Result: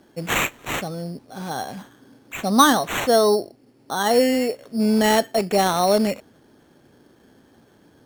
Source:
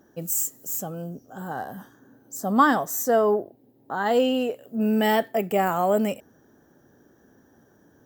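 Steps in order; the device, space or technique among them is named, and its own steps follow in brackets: crushed at another speed (playback speed 0.5×; sample-and-hold 18×; playback speed 2×); trim +3.5 dB

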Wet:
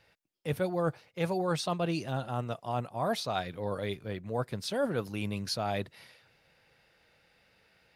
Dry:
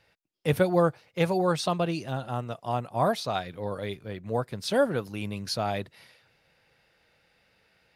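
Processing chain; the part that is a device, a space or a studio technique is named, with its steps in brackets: compression on the reversed sound (reverse; compression 6:1, threshold -27 dBFS, peak gain reduction 10 dB; reverse)

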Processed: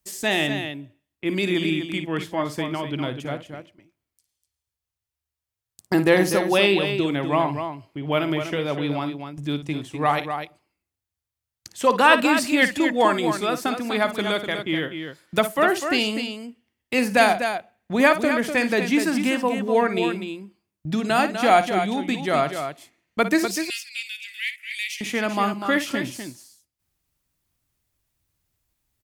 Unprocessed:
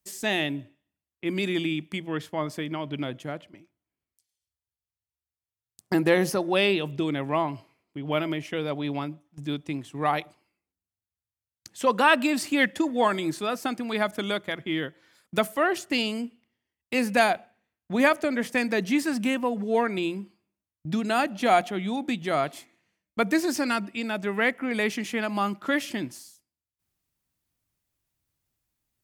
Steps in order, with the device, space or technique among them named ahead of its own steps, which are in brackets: low shelf boost with a cut just above (bass shelf 78 Hz +5.5 dB; peaking EQ 210 Hz -2.5 dB 0.91 oct); 23.45–25.01 s: steep high-pass 2.2 kHz 48 dB/octave; loudspeakers at several distances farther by 19 m -12 dB, 85 m -8 dB; trim +4 dB

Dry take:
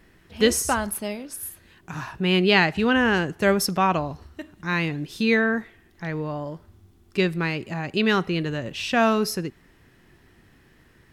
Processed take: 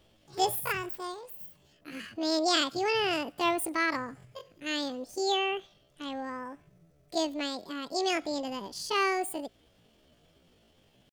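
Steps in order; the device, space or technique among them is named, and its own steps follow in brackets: 1.32–1.93 s: peaking EQ 3 kHz -3.5 dB 2.4 oct; chipmunk voice (pitch shift +9.5 st); trim -8 dB

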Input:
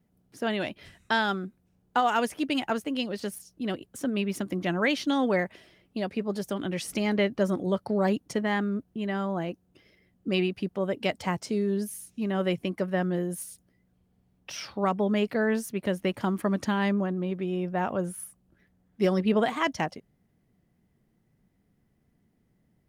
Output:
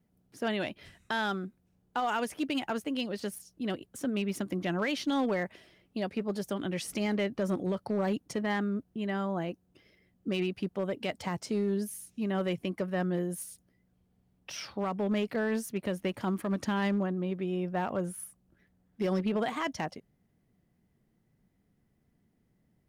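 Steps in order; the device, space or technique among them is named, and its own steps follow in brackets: limiter into clipper (peak limiter -19 dBFS, peak gain reduction 5 dB; hard clipper -21 dBFS, distortion -26 dB); trim -2.5 dB

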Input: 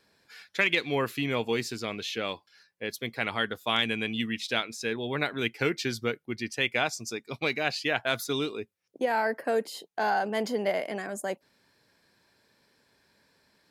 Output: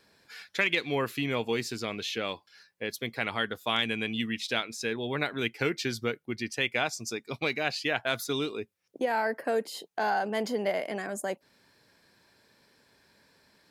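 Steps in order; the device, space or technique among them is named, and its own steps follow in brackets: parallel compression (in parallel at 0 dB: compression, threshold -38 dBFS, peak gain reduction 16.5 dB); on the sum: trim -3 dB

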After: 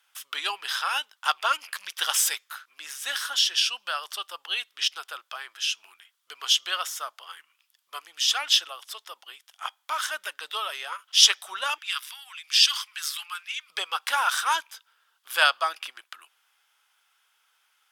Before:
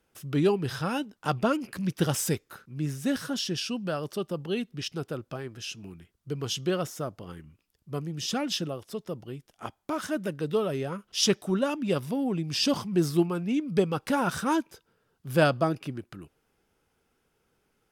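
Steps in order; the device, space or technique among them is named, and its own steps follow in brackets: 11.78–13.70 s: high-pass 1.3 kHz 24 dB/octave; headphones lying on a table (high-pass 1 kHz 24 dB/octave; peaking EQ 3.3 kHz +7 dB 0.33 oct); trim +8 dB

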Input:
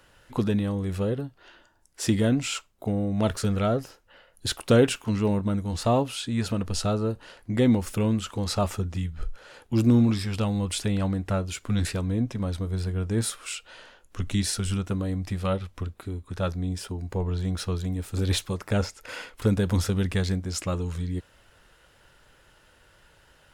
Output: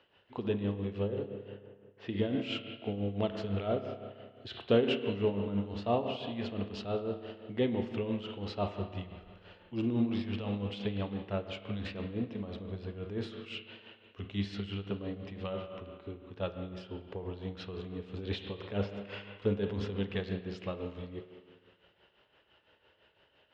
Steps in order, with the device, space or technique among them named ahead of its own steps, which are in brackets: combo amplifier with spring reverb and tremolo (spring tank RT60 1.9 s, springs 30/49 ms, chirp 25 ms, DRR 4.5 dB; tremolo 5.9 Hz, depth 62%; cabinet simulation 100–3900 Hz, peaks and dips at 150 Hz -7 dB, 420 Hz +6 dB, 680 Hz +3 dB, 1.4 kHz -4 dB, 2.9 kHz +7 dB); 1.08–2.34 s: level-controlled noise filter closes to 1.8 kHz, open at -20 dBFS; trim -7.5 dB

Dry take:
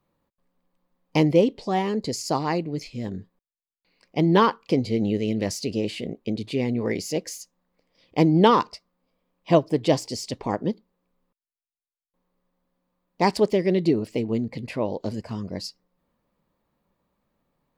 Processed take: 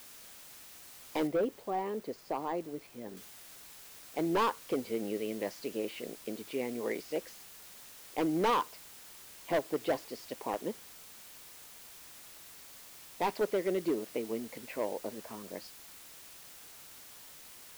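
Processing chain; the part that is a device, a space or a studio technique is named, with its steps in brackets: aircraft radio (band-pass 380–2500 Hz; hard clipper -19 dBFS, distortion -9 dB; white noise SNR 15 dB); 1.27–3.17 s: de-esser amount 100%; trim -5.5 dB

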